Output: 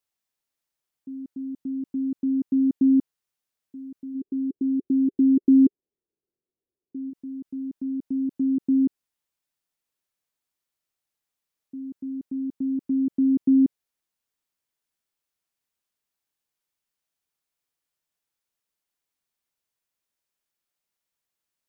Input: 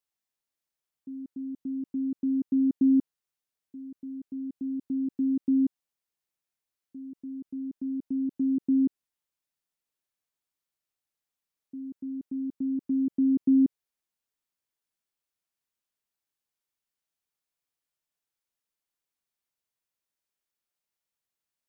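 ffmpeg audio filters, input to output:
ffmpeg -i in.wav -filter_complex "[0:a]asplit=3[link_01][link_02][link_03];[link_01]afade=type=out:start_time=4.14:duration=0.02[link_04];[link_02]lowpass=frequency=390:width_type=q:width=4.2,afade=type=in:start_time=4.14:duration=0.02,afade=type=out:start_time=7.09:duration=0.02[link_05];[link_03]afade=type=in:start_time=7.09:duration=0.02[link_06];[link_04][link_05][link_06]amix=inputs=3:normalize=0,volume=3dB" out.wav

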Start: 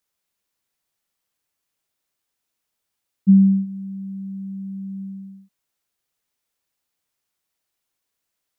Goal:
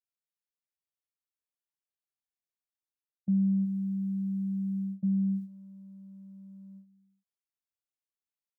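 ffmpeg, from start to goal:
ffmpeg -i in.wav -filter_complex "[0:a]asplit=2[link_01][link_02];[link_02]adelay=1749,volume=-6dB,highshelf=frequency=4000:gain=-39.4[link_03];[link_01][link_03]amix=inputs=2:normalize=0,areverse,acompressor=threshold=-27dB:ratio=4,areverse,agate=range=-22dB:threshold=-36dB:ratio=16:detection=peak,acontrast=64,volume=-6.5dB" out.wav

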